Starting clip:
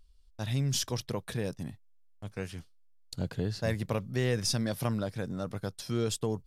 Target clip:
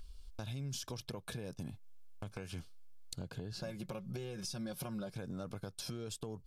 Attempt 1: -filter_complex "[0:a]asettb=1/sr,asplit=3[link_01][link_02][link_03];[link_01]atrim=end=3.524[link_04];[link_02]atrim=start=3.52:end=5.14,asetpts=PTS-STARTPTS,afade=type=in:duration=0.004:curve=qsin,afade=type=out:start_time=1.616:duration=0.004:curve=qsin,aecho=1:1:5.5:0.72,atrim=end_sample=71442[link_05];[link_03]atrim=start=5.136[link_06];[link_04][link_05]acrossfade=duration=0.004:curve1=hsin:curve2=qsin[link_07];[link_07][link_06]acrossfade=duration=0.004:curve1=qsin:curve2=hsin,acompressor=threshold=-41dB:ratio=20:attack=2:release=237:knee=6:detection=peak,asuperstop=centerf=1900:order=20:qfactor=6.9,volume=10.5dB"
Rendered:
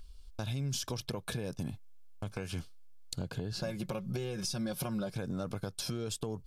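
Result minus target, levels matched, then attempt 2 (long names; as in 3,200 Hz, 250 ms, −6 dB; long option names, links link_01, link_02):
downward compressor: peak gain reduction −6 dB
-filter_complex "[0:a]asettb=1/sr,asplit=3[link_01][link_02][link_03];[link_01]atrim=end=3.524[link_04];[link_02]atrim=start=3.52:end=5.14,asetpts=PTS-STARTPTS,afade=type=in:duration=0.004:curve=qsin,afade=type=out:start_time=1.616:duration=0.004:curve=qsin,aecho=1:1:5.5:0.72,atrim=end_sample=71442[link_05];[link_03]atrim=start=5.136[link_06];[link_04][link_05]acrossfade=duration=0.004:curve1=hsin:curve2=qsin[link_07];[link_07][link_06]acrossfade=duration=0.004:curve1=qsin:curve2=hsin,acompressor=threshold=-47.5dB:ratio=20:attack=2:release=237:knee=6:detection=peak,asuperstop=centerf=1900:order=20:qfactor=6.9,volume=10.5dB"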